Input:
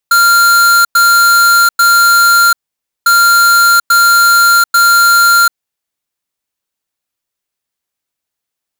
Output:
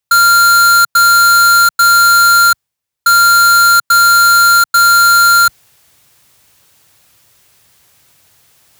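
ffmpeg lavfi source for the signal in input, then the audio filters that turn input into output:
-f lavfi -i "aevalsrc='0.447*(2*lt(mod(1390*t,1),0.5)-1)*clip(min(mod(mod(t,2.95),0.84),0.74-mod(mod(t,2.95),0.84))/0.005,0,1)*lt(mod(t,2.95),2.52)':d=5.9:s=44100"
-af "highpass=65,lowshelf=f=170:t=q:w=1.5:g=7,areverse,acompressor=mode=upward:threshold=0.0447:ratio=2.5,areverse"

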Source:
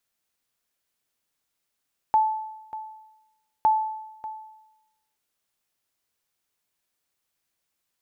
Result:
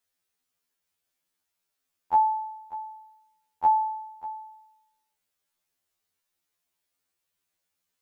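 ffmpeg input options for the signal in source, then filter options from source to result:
-f lavfi -i "aevalsrc='0.211*(sin(2*PI*871*mod(t,1.51))*exp(-6.91*mod(t,1.51)/0.96)+0.158*sin(2*PI*871*max(mod(t,1.51)-0.59,0))*exp(-6.91*max(mod(t,1.51)-0.59,0)/0.96))':d=3.02:s=44100"
-af "afftfilt=real='re*2*eq(mod(b,4),0)':imag='im*2*eq(mod(b,4),0)':win_size=2048:overlap=0.75"

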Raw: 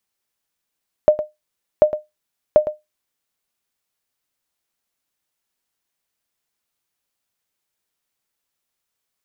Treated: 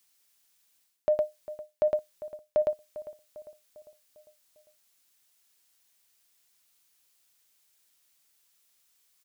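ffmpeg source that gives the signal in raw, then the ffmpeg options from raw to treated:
-f lavfi -i "aevalsrc='0.75*(sin(2*PI*608*mod(t,0.74))*exp(-6.91*mod(t,0.74)/0.18)+0.237*sin(2*PI*608*max(mod(t,0.74)-0.11,0))*exp(-6.91*max(mod(t,0.74)-0.11,0)/0.18))':d=2.22:s=44100"
-filter_complex "[0:a]highshelf=f=2000:g=12,areverse,acompressor=threshold=0.0708:ratio=10,areverse,asplit=2[s0][s1];[s1]adelay=400,lowpass=f=2000:p=1,volume=0.178,asplit=2[s2][s3];[s3]adelay=400,lowpass=f=2000:p=1,volume=0.54,asplit=2[s4][s5];[s5]adelay=400,lowpass=f=2000:p=1,volume=0.54,asplit=2[s6][s7];[s7]adelay=400,lowpass=f=2000:p=1,volume=0.54,asplit=2[s8][s9];[s9]adelay=400,lowpass=f=2000:p=1,volume=0.54[s10];[s0][s2][s4][s6][s8][s10]amix=inputs=6:normalize=0"

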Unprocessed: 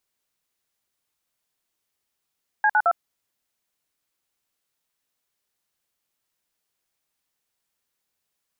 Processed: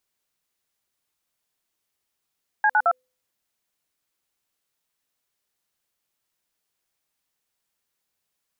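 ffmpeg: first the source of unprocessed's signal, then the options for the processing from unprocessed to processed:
-f lavfi -i "aevalsrc='0.126*clip(min(mod(t,0.109),0.056-mod(t,0.109))/0.002,0,1)*(eq(floor(t/0.109),0)*(sin(2*PI*852*mod(t,0.109))+sin(2*PI*1633*mod(t,0.109)))+eq(floor(t/0.109),1)*(sin(2*PI*852*mod(t,0.109))+sin(2*PI*1477*mod(t,0.109)))+eq(floor(t/0.109),2)*(sin(2*PI*697*mod(t,0.109))+sin(2*PI*1336*mod(t,0.109))))':d=0.327:s=44100"
-af "bandreject=f=253.9:t=h:w=4,bandreject=f=507.8:t=h:w=4"

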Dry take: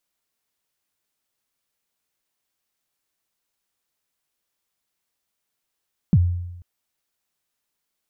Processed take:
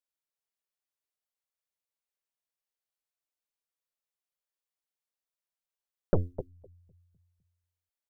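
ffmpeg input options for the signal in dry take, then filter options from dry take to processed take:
-f lavfi -i "aevalsrc='0.335*pow(10,-3*t/0.97)*sin(2*PI*(210*0.046/log(88/210)*(exp(log(88/210)*min(t,0.046)/0.046)-1)+88*max(t-0.046,0)))':d=0.49:s=44100"
-filter_complex "[0:a]asplit=2[s0][s1];[s1]adelay=254,lowpass=f=830:p=1,volume=0.501,asplit=2[s2][s3];[s3]adelay=254,lowpass=f=830:p=1,volume=0.45,asplit=2[s4][s5];[s5]adelay=254,lowpass=f=830:p=1,volume=0.45,asplit=2[s6][s7];[s7]adelay=254,lowpass=f=830:p=1,volume=0.45,asplit=2[s8][s9];[s9]adelay=254,lowpass=f=830:p=1,volume=0.45[s10];[s2][s4][s6][s8][s10]amix=inputs=5:normalize=0[s11];[s0][s11]amix=inputs=2:normalize=0,aeval=exprs='0.335*(cos(1*acos(clip(val(0)/0.335,-1,1)))-cos(1*PI/2))+0.0944*(cos(2*acos(clip(val(0)/0.335,-1,1)))-cos(2*PI/2))+0.0944*(cos(3*acos(clip(val(0)/0.335,-1,1)))-cos(3*PI/2))+0.015*(cos(7*acos(clip(val(0)/0.335,-1,1)))-cos(7*PI/2))+0.00841*(cos(8*acos(clip(val(0)/0.335,-1,1)))-cos(8*PI/2))':c=same,equalizer=f=125:t=o:w=1:g=-11,equalizer=f=250:t=o:w=1:g=-12,equalizer=f=500:t=o:w=1:g=5"

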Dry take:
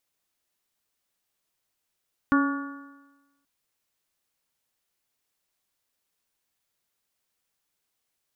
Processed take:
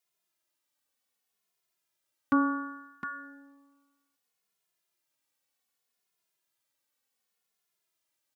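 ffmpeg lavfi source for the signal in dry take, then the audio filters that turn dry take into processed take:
-f lavfi -i "aevalsrc='0.141*pow(10,-3*t/1.13)*sin(2*PI*278.38*t)+0.0211*pow(10,-3*t/1.13)*sin(2*PI*558.99*t)+0.0178*pow(10,-3*t/1.13)*sin(2*PI*844.07*t)+0.0708*pow(10,-3*t/1.13)*sin(2*PI*1135.77*t)+0.0631*pow(10,-3*t/1.13)*sin(2*PI*1436.15*t)+0.0188*pow(10,-3*t/1.13)*sin(2*PI*1747.19*t)':d=1.13:s=44100"
-filter_complex "[0:a]highpass=f=190:p=1,aecho=1:1:711:0.398,asplit=2[s0][s1];[s1]adelay=2.4,afreqshift=-0.66[s2];[s0][s2]amix=inputs=2:normalize=1"

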